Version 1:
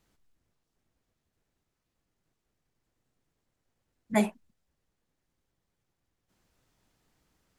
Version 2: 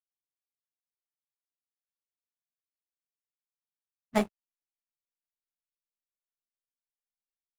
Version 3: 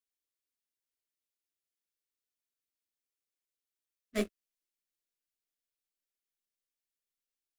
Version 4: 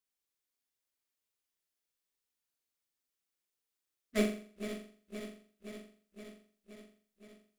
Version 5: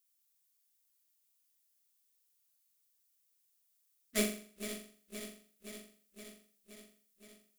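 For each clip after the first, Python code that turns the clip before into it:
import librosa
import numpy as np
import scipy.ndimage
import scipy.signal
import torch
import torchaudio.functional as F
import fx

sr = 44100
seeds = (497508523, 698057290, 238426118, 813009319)

y1 = fx.backlash(x, sr, play_db=-29.5)
y1 = fx.power_curve(y1, sr, exponent=2.0)
y1 = y1 * librosa.db_to_amplitude(3.0)
y2 = fx.transient(y1, sr, attack_db=-7, sustain_db=1)
y2 = fx.fixed_phaser(y2, sr, hz=360.0, stages=4)
y2 = y2 * librosa.db_to_amplitude(2.5)
y3 = fx.reverse_delay_fb(y2, sr, ms=260, feedback_pct=82, wet_db=-11.0)
y3 = fx.room_flutter(y3, sr, wall_m=7.3, rt60_s=0.48)
y3 = y3 * librosa.db_to_amplitude(1.0)
y4 = F.preemphasis(torch.from_numpy(y3), 0.8).numpy()
y4 = y4 * librosa.db_to_amplitude(10.0)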